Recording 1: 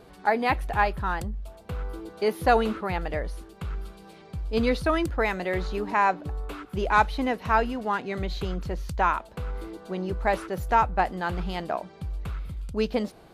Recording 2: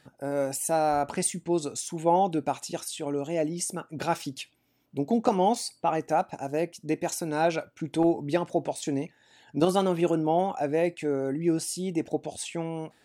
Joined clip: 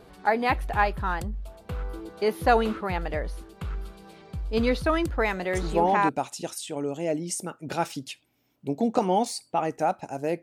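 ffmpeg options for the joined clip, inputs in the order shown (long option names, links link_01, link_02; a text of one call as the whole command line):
ffmpeg -i cue0.wav -i cue1.wav -filter_complex "[0:a]apad=whole_dur=10.42,atrim=end=10.42,atrim=end=6.09,asetpts=PTS-STARTPTS[link_01];[1:a]atrim=start=1.85:end=6.72,asetpts=PTS-STARTPTS[link_02];[link_01][link_02]acrossfade=duration=0.54:curve1=log:curve2=log" out.wav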